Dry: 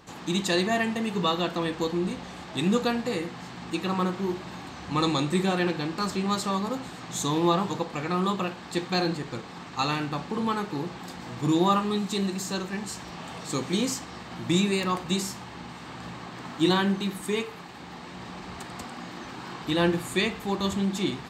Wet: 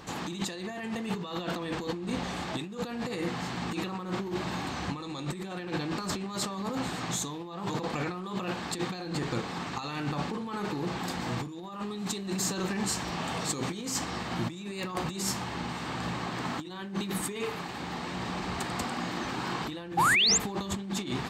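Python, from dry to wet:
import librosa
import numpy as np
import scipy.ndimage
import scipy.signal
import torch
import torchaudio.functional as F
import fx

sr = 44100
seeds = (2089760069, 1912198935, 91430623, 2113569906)

y = fx.over_compress(x, sr, threshold_db=-34.0, ratio=-1.0)
y = fx.spec_paint(y, sr, seeds[0], shape='rise', start_s=19.97, length_s=0.41, low_hz=750.0, high_hz=7800.0, level_db=-23.0)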